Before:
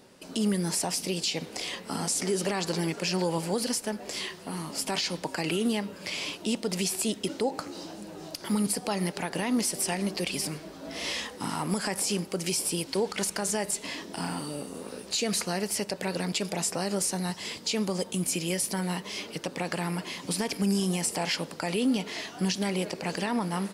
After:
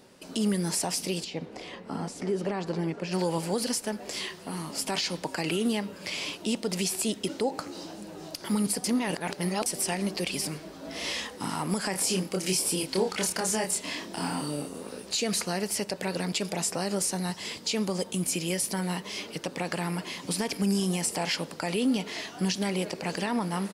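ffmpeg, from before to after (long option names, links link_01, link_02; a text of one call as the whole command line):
ffmpeg -i in.wav -filter_complex "[0:a]asplit=3[link_01][link_02][link_03];[link_01]afade=type=out:start_time=1.23:duration=0.02[link_04];[link_02]lowpass=frequency=1100:poles=1,afade=type=in:start_time=1.23:duration=0.02,afade=type=out:start_time=3.11:duration=0.02[link_05];[link_03]afade=type=in:start_time=3.11:duration=0.02[link_06];[link_04][link_05][link_06]amix=inputs=3:normalize=0,asplit=3[link_07][link_08][link_09];[link_07]afade=type=out:start_time=11.93:duration=0.02[link_10];[link_08]asplit=2[link_11][link_12];[link_12]adelay=27,volume=-3dB[link_13];[link_11][link_13]amix=inputs=2:normalize=0,afade=type=in:start_time=11.93:duration=0.02,afade=type=out:start_time=14.67:duration=0.02[link_14];[link_09]afade=type=in:start_time=14.67:duration=0.02[link_15];[link_10][link_14][link_15]amix=inputs=3:normalize=0,asplit=3[link_16][link_17][link_18];[link_16]atrim=end=8.842[link_19];[link_17]atrim=start=8.838:end=9.662,asetpts=PTS-STARTPTS,areverse[link_20];[link_18]atrim=start=9.658[link_21];[link_19][link_20]acrossfade=duration=0.004:curve1=hsin:curve2=hsin[link_22];[link_22][link_21]acrossfade=duration=0.004:curve1=hsin:curve2=hsin" out.wav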